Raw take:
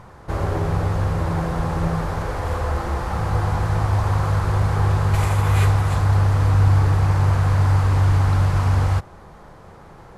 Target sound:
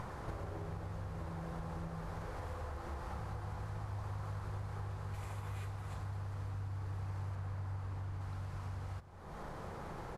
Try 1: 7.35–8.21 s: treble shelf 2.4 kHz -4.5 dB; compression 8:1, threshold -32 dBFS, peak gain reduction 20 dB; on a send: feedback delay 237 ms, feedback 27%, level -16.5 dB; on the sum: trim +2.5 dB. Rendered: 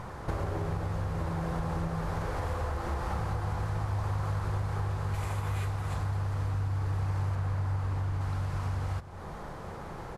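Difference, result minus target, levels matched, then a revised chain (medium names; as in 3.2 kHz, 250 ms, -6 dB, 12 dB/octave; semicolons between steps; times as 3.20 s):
compression: peak gain reduction -10.5 dB
7.35–8.21 s: treble shelf 2.4 kHz -4.5 dB; compression 8:1, threshold -44 dBFS, peak gain reduction 30.5 dB; on a send: feedback delay 237 ms, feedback 27%, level -16.5 dB; on the sum: trim +2.5 dB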